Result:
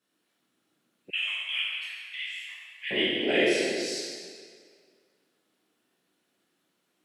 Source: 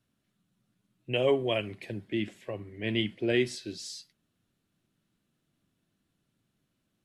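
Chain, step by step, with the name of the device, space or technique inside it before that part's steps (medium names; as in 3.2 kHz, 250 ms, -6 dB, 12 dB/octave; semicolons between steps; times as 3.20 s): whispering ghost (whisper effect; high-pass 370 Hz 12 dB/octave; reverberation RT60 2.0 s, pre-delay 12 ms, DRR -7 dB); 1.10–2.91 s: inverse Chebyshev high-pass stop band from 400 Hz, stop band 70 dB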